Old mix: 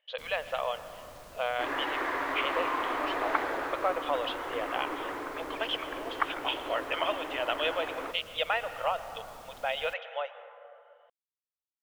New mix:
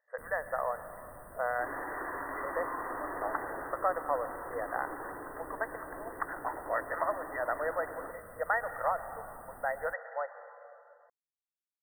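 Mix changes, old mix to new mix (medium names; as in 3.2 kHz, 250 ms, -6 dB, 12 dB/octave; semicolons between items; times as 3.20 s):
speech: add tilt EQ +2 dB/octave; second sound -6.5 dB; master: add brick-wall FIR band-stop 2–8.2 kHz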